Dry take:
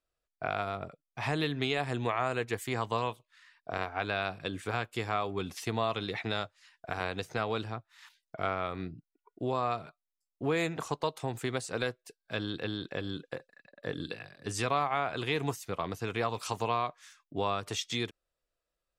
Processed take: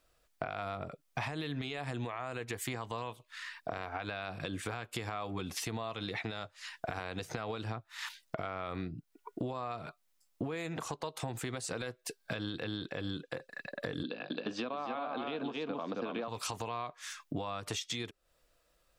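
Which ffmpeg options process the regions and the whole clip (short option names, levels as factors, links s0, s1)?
-filter_complex "[0:a]asettb=1/sr,asplit=3[s0][s1][s2];[s0]atrim=end=14.034[s3];[s1]atrim=start=14.03:end=16.28,asetpts=PTS-STARTPTS,afade=t=in:d=0.004:c=qsin,afade=t=out:st=2.246:d=0.004:c=qsin,agate=range=0.501:threshold=0.00355:ratio=16:release=100:detection=peak,highpass=f=190:w=0.5412,highpass=f=190:w=1.3066,equalizer=f=250:t=q:w=4:g=9,equalizer=f=560:t=q:w=4:g=5,equalizer=f=2000:t=q:w=4:g=-10,lowpass=f=4000:w=0.5412,lowpass=f=4000:w=1.3066,aecho=1:1:269:0.596,atrim=end_sample=99225[s4];[s2]atrim=start=16.276[s5];[s3][s4]acrossfade=d=0.004:c1=hsin:c2=qsin[s6];[s6][s5]acrossfade=d=0.004:c1=qsin:c2=hsin,bandreject=f=400:w=12,alimiter=level_in=1.33:limit=0.0631:level=0:latency=1:release=124,volume=0.75,acompressor=threshold=0.00316:ratio=8,volume=5.62"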